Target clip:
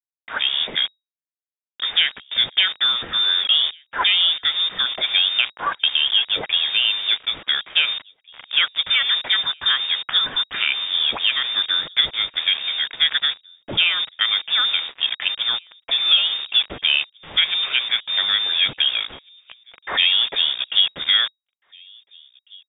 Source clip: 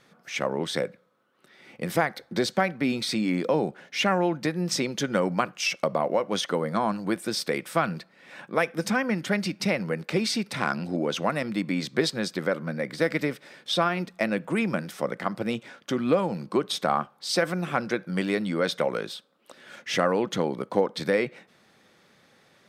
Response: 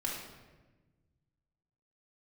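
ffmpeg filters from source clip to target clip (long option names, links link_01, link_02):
-filter_complex "[0:a]adynamicequalizer=threshold=0.00355:dfrequency=130:dqfactor=4.7:tfrequency=130:tqfactor=4.7:attack=5:release=100:ratio=0.375:range=2:mode=cutabove:tftype=bell,acontrast=64,acrusher=bits=4:mix=0:aa=0.000001,asplit=2[link_01][link_02];[link_02]adelay=1749,volume=-26dB,highshelf=frequency=4000:gain=-39.4[link_03];[link_01][link_03]amix=inputs=2:normalize=0,lowpass=frequency=3200:width_type=q:width=0.5098,lowpass=frequency=3200:width_type=q:width=0.6013,lowpass=frequency=3200:width_type=q:width=0.9,lowpass=frequency=3200:width_type=q:width=2.563,afreqshift=-3800"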